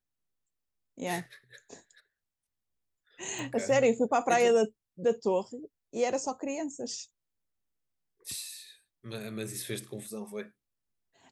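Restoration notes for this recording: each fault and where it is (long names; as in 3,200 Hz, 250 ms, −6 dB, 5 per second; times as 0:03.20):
0:03.39: click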